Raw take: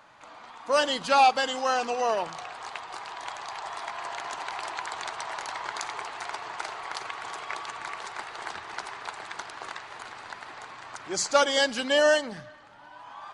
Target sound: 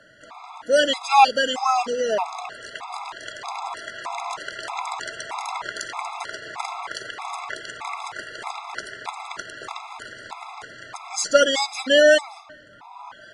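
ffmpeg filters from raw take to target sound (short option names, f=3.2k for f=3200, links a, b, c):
-af "afftfilt=real='re*gt(sin(2*PI*1.6*pts/sr)*(1-2*mod(floor(b*sr/1024/680),2)),0)':imag='im*gt(sin(2*PI*1.6*pts/sr)*(1-2*mod(floor(b*sr/1024/680),2)),0)':win_size=1024:overlap=0.75,volume=7dB"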